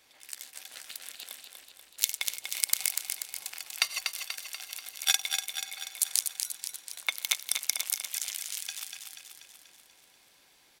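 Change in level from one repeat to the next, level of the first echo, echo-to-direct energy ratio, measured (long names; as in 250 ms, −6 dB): −4.5 dB, −6.0 dB, −4.0 dB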